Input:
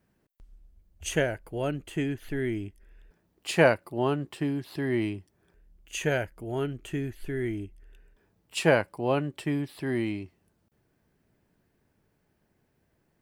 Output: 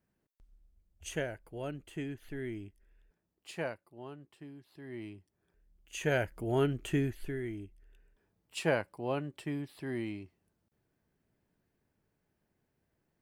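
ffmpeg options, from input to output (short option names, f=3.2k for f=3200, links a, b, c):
-af "volume=12dB,afade=t=out:st=2.62:d=1.25:silence=0.298538,afade=t=in:st=4.75:d=1.21:silence=0.237137,afade=t=in:st=5.96:d=0.43:silence=0.354813,afade=t=out:st=6.99:d=0.43:silence=0.334965"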